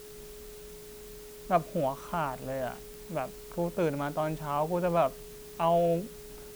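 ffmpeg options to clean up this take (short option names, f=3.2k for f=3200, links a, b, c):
-af "adeclick=t=4,bandreject=f=420:w=30,afftdn=nr=28:nf=-46"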